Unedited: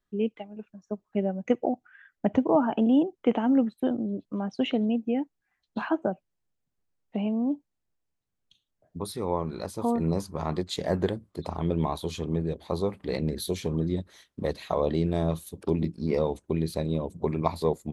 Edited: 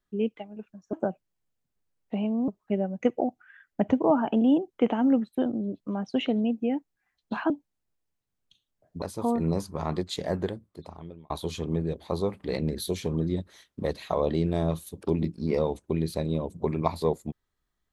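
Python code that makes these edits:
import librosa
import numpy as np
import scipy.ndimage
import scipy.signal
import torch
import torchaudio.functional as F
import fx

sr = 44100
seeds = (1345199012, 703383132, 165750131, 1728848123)

y = fx.edit(x, sr, fx.move(start_s=5.95, length_s=1.55, to_s=0.93),
    fx.cut(start_s=9.02, length_s=0.6),
    fx.fade_out_span(start_s=10.63, length_s=1.27), tone=tone)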